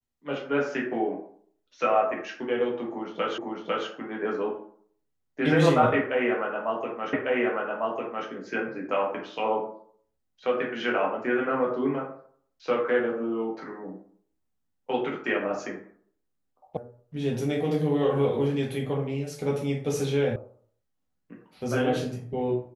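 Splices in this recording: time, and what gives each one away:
0:03.38: the same again, the last 0.5 s
0:07.13: the same again, the last 1.15 s
0:16.77: cut off before it has died away
0:20.36: cut off before it has died away

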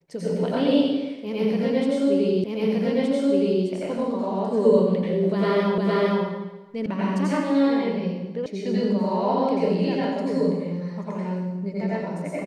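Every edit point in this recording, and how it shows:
0:02.44: the same again, the last 1.22 s
0:05.78: the same again, the last 0.46 s
0:06.86: cut off before it has died away
0:08.46: cut off before it has died away

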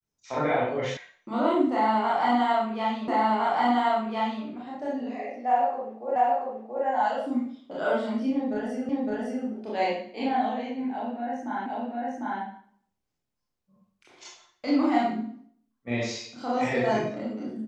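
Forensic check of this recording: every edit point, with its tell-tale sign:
0:00.97: cut off before it has died away
0:03.08: the same again, the last 1.36 s
0:06.16: the same again, the last 0.68 s
0:08.89: the same again, the last 0.56 s
0:11.66: the same again, the last 0.75 s

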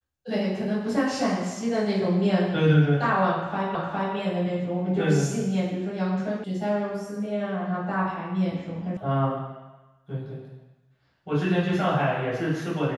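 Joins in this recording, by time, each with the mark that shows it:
0:03.75: the same again, the last 0.41 s
0:06.44: cut off before it has died away
0:08.97: cut off before it has died away

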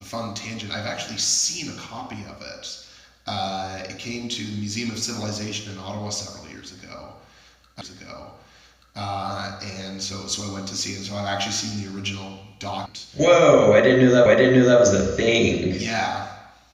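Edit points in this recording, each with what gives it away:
0:07.81: the same again, the last 1.18 s
0:12.86: cut off before it has died away
0:14.26: the same again, the last 0.54 s

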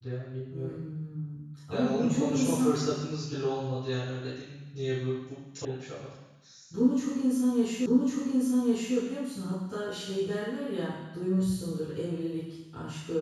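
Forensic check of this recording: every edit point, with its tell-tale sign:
0:05.65: cut off before it has died away
0:07.86: the same again, the last 1.1 s

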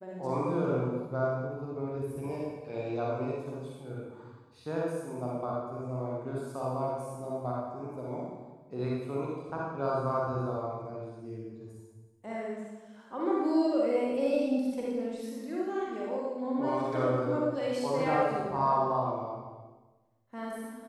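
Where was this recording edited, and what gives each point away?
no edit point found

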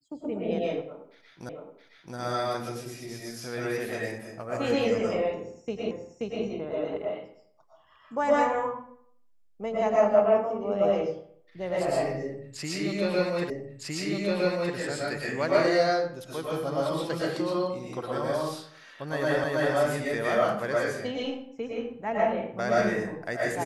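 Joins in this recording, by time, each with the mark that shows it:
0:01.49: the same again, the last 0.67 s
0:05.91: the same again, the last 0.53 s
0:13.50: the same again, the last 1.26 s
0:19.44: the same again, the last 0.32 s

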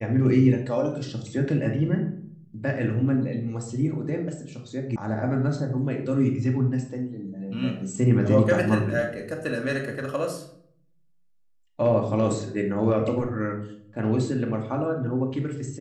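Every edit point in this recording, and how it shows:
0:04.96: cut off before it has died away

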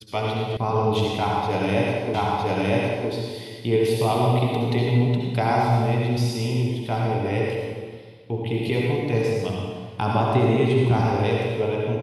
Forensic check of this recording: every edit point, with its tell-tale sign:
0:00.57: cut off before it has died away
0:02.14: the same again, the last 0.96 s

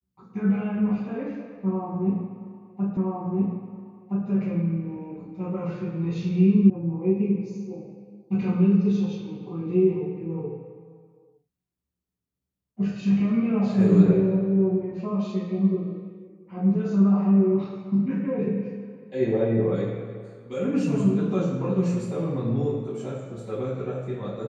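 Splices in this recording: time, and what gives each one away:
0:02.97: the same again, the last 1.32 s
0:06.70: cut off before it has died away

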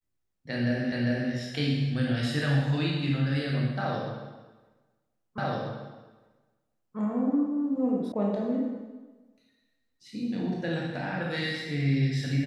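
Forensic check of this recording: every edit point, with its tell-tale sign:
0:00.92: the same again, the last 0.4 s
0:05.38: the same again, the last 1.59 s
0:08.12: cut off before it has died away

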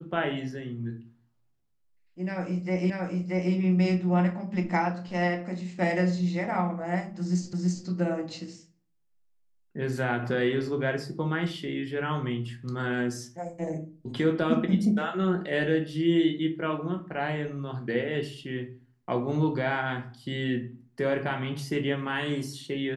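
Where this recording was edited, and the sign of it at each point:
0:02.90: the same again, the last 0.63 s
0:07.53: the same again, the last 0.33 s

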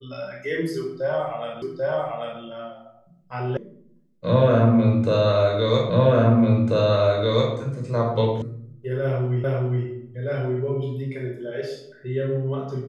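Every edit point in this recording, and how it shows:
0:01.62: the same again, the last 0.79 s
0:03.57: cut off before it has died away
0:05.90: the same again, the last 1.64 s
0:08.42: cut off before it has died away
0:09.44: the same again, the last 0.41 s

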